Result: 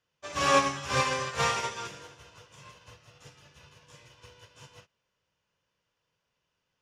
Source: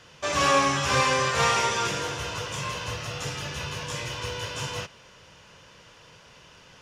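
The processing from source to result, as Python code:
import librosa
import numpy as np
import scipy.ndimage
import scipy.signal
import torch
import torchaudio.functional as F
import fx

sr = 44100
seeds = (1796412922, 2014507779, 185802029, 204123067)

y = fx.upward_expand(x, sr, threshold_db=-38.0, expansion=2.5)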